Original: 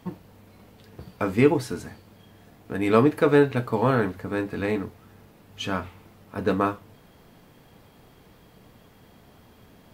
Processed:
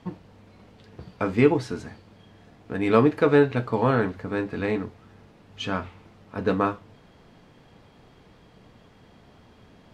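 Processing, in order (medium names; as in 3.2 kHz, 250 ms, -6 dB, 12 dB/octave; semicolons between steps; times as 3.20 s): low-pass 6 kHz 12 dB/octave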